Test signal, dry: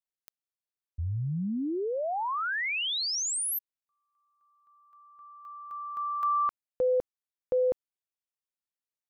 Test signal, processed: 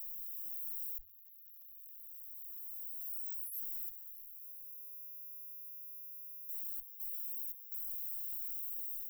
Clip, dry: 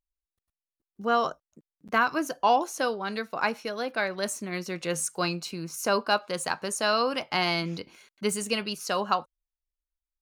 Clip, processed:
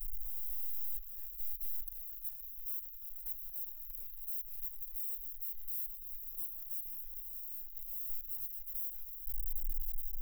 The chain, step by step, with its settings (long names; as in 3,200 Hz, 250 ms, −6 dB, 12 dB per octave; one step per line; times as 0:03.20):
sign of each sample alone
automatic gain control gain up to 3.5 dB
inverse Chebyshev band-stop filter 120–4,800 Hz, stop band 70 dB
flat-topped bell 510 Hz +12.5 dB 1.3 octaves
in parallel at −11 dB: soft clipping −38 dBFS
on the sum: level −4 dB